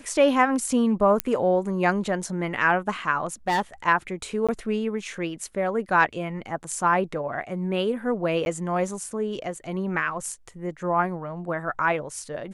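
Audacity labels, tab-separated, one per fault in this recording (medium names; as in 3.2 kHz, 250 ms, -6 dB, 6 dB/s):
1.200000	1.200000	pop -6 dBFS
3.480000	3.610000	clipped -18.5 dBFS
4.470000	4.490000	dropout 16 ms
8.450000	8.460000	dropout 11 ms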